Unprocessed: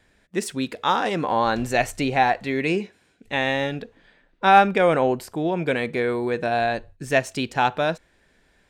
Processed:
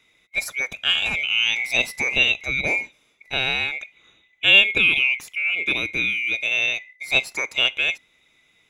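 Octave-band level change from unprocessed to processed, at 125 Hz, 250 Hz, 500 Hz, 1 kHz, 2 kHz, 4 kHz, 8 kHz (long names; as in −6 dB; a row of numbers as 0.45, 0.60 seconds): −10.0, −13.0, −12.0, −17.5, +7.5, +12.5, +2.0 decibels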